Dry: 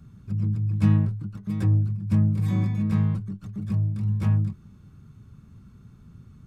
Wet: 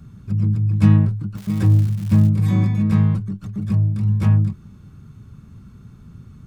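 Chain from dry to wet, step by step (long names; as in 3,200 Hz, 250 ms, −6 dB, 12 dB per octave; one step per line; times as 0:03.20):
0:01.35–0:02.28: surface crackle 340 per second −37 dBFS
level +6.5 dB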